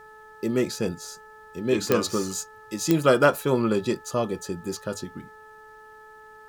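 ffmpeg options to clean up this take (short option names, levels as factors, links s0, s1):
-af "adeclick=t=4,bandreject=f=432.7:t=h:w=4,bandreject=f=865.4:t=h:w=4,bandreject=f=1298.1:t=h:w=4,bandreject=f=1730.8:t=h:w=4,agate=range=0.0891:threshold=0.01"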